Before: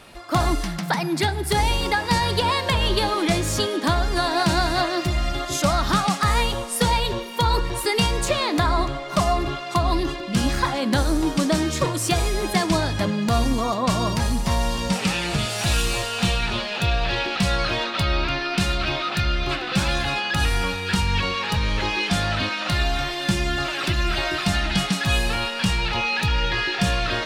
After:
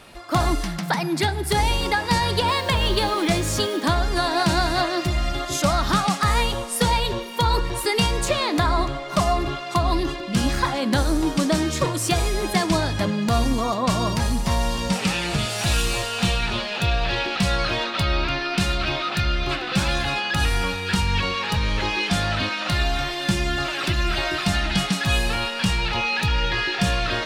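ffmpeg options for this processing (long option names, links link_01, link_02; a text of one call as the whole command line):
ffmpeg -i in.wav -filter_complex "[0:a]asettb=1/sr,asplit=3[link_01][link_02][link_03];[link_01]atrim=end=2.484[link_04];[link_02]atrim=start=2.48:end=3.83,asetpts=PTS-STARTPTS,afade=type=in:duration=0.004:curve=qsin,afade=type=out:start_time=1.346:duration=0.004:curve=qsin,acrusher=bits=6:mix=0:aa=0.5[link_05];[link_03]atrim=start=3.826[link_06];[link_04][link_05]acrossfade=duration=0.004:curve1=hsin:curve2=qsin[link_07];[link_07][link_06]acrossfade=duration=0.004:curve1=qsin:curve2=hsin" out.wav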